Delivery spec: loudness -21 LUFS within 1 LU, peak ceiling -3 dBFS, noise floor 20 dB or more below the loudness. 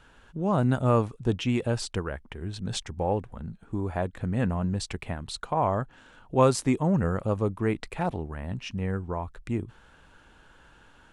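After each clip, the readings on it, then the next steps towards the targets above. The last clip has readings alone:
loudness -28.5 LUFS; peak level -8.0 dBFS; loudness target -21.0 LUFS
-> trim +7.5 dB; peak limiter -3 dBFS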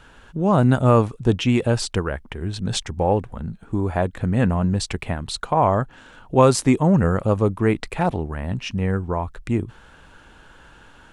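loudness -21.5 LUFS; peak level -3.0 dBFS; noise floor -49 dBFS

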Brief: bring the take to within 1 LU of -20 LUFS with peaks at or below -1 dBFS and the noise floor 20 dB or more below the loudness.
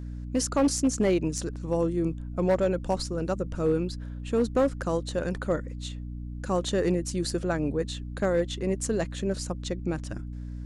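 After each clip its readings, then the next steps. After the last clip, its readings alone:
clipped samples 0.5%; clipping level -17.0 dBFS; hum 60 Hz; highest harmonic 300 Hz; hum level -34 dBFS; loudness -28.5 LUFS; peak level -17.0 dBFS; loudness target -20.0 LUFS
-> clip repair -17 dBFS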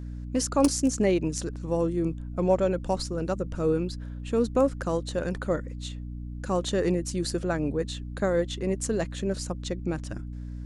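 clipped samples 0.0%; hum 60 Hz; highest harmonic 300 Hz; hum level -34 dBFS
-> hum notches 60/120/180/240/300 Hz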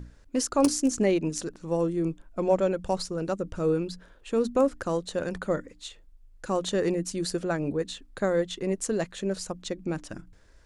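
hum not found; loudness -28.5 LUFS; peak level -8.0 dBFS; loudness target -20.0 LUFS
-> trim +8.5 dB; peak limiter -1 dBFS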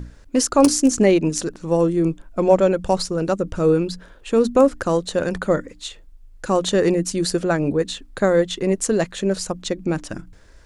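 loudness -20.0 LUFS; peak level -1.0 dBFS; noise floor -47 dBFS

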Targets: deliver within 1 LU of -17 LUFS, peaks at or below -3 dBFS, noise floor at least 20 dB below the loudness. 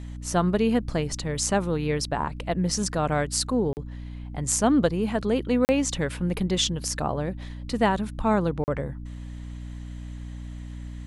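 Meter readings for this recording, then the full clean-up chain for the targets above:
dropouts 3; longest dropout 39 ms; hum 60 Hz; highest harmonic 300 Hz; hum level -35 dBFS; loudness -25.5 LUFS; peak level -7.5 dBFS; loudness target -17.0 LUFS
-> interpolate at 3.73/5.65/8.64 s, 39 ms; hum notches 60/120/180/240/300 Hz; trim +8.5 dB; peak limiter -3 dBFS

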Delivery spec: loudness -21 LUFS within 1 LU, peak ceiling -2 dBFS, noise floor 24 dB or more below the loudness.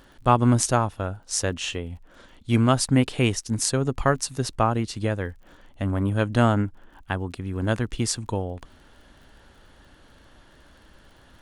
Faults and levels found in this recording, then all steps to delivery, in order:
tick rate 42 per s; loudness -24.5 LUFS; peak level -3.0 dBFS; loudness target -21.0 LUFS
-> de-click; trim +3.5 dB; peak limiter -2 dBFS

